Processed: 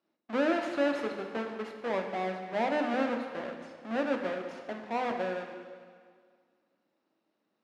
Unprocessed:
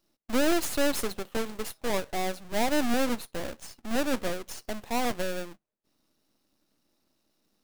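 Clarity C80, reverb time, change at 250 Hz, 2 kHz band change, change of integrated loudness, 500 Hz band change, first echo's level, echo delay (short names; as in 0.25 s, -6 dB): 7.0 dB, 1.9 s, -3.0 dB, -2.0 dB, -2.5 dB, -0.5 dB, none, none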